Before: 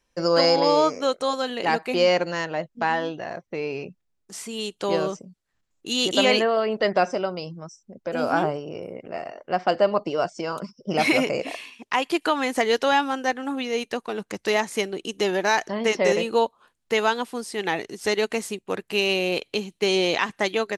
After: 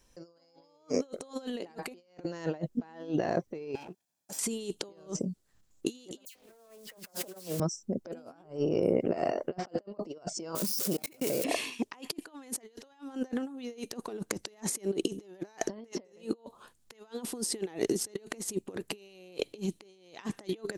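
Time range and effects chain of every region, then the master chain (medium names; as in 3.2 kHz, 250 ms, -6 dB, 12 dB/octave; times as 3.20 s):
3.75–4.39 s: comb filter that takes the minimum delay 1.2 ms + high-pass 290 Hz + compression 16:1, threshold -46 dBFS
6.25–7.60 s: zero-crossing glitches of -19 dBFS + phase dispersion lows, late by 105 ms, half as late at 2.6 kHz + loudspeaker Doppler distortion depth 0.4 ms
10.55–11.44 s: zero-crossing glitches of -17.5 dBFS + level held to a coarse grid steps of 20 dB + tape noise reduction on one side only decoder only
whole clip: FFT filter 130 Hz 0 dB, 2.3 kHz -8 dB, 7.6 kHz +1 dB; compressor with a negative ratio -39 dBFS, ratio -0.5; dynamic bell 350 Hz, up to +7 dB, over -52 dBFS, Q 0.91; trim -1 dB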